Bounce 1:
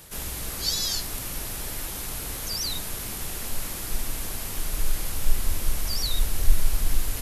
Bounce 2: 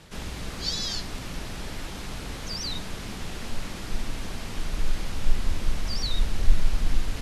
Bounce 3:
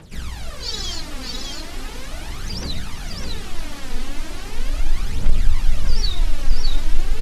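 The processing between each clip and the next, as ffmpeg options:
ffmpeg -i in.wav -af "lowpass=4800,equalizer=frequency=200:width_type=o:width=0.93:gain=5" out.wav
ffmpeg -i in.wav -af "aphaser=in_gain=1:out_gain=1:delay=4.1:decay=0.71:speed=0.38:type=triangular,asoftclip=type=tanh:threshold=-1dB,aecho=1:1:607:0.631,volume=-1dB" out.wav

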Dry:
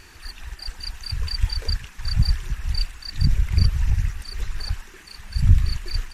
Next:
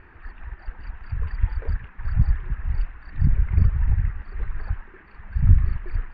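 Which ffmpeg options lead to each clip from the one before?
ffmpeg -i in.wav -af "lowpass=frequency=1900:width=0.5412,lowpass=frequency=1900:width=1.3066" out.wav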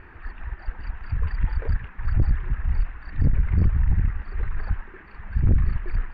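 ffmpeg -i in.wav -af "aeval=exprs='(tanh(7.08*val(0)+0.3)-tanh(0.3))/7.08':channel_layout=same,volume=4dB" out.wav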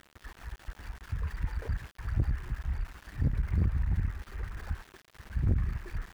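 ffmpeg -i in.wav -af "highpass=44,aeval=exprs='val(0)*gte(abs(val(0)),0.00944)':channel_layout=same,volume=-6.5dB" out.wav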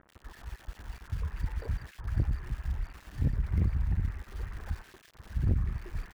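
ffmpeg -i in.wav -filter_complex "[0:a]acrossover=split=1600[link_01][link_02];[link_02]adelay=90[link_03];[link_01][link_03]amix=inputs=2:normalize=0" out.wav

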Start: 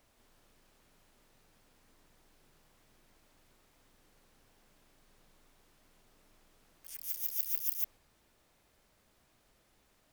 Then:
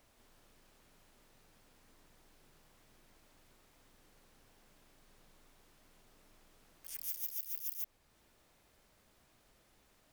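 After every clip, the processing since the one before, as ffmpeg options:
ffmpeg -i in.wav -af "alimiter=limit=-23.5dB:level=0:latency=1:release=367,volume=1dB" out.wav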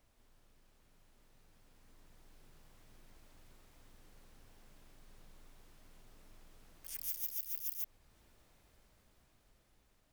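ffmpeg -i in.wav -af "lowshelf=frequency=130:gain=9,dynaudnorm=framelen=780:gausssize=5:maxgain=7dB,volume=-6.5dB" out.wav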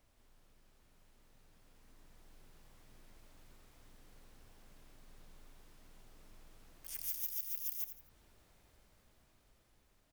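ffmpeg -i in.wav -af "aecho=1:1:84|168|252:0.299|0.0955|0.0306" out.wav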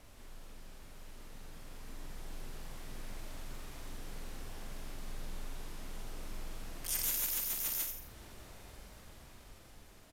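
ffmpeg -i in.wav -filter_complex "[0:a]asoftclip=type=tanh:threshold=-36.5dB,aresample=32000,aresample=44100,asplit=2[link_01][link_02];[link_02]adelay=45,volume=-6.5dB[link_03];[link_01][link_03]amix=inputs=2:normalize=0,volume=14dB" out.wav

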